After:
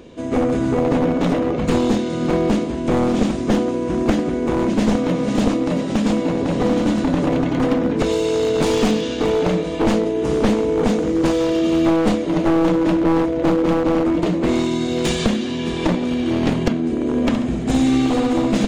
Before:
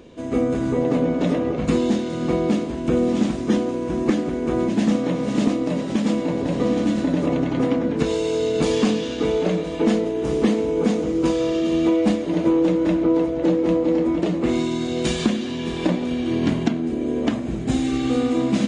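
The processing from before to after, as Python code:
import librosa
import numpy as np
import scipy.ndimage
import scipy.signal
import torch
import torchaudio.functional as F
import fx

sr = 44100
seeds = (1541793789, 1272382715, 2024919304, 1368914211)

y = np.minimum(x, 2.0 * 10.0 ** (-17.0 / 20.0) - x)
y = fx.room_flutter(y, sr, wall_m=11.8, rt60_s=0.53, at=(17.13, 18.06), fade=0.02)
y = y * 10.0 ** (3.5 / 20.0)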